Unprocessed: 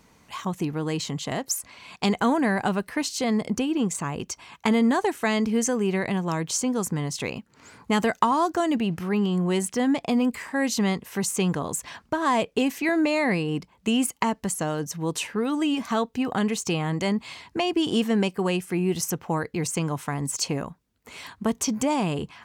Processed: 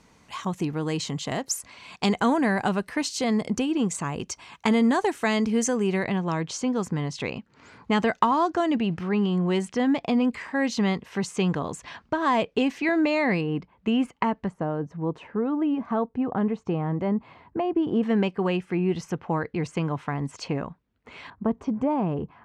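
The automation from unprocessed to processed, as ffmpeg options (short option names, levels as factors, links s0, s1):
-af "asetnsamples=n=441:p=0,asendcmd='6.04 lowpass f 4400;13.41 lowpass f 2300;14.48 lowpass f 1100;18.03 lowpass f 2800;21.3 lowpass f 1100',lowpass=9300"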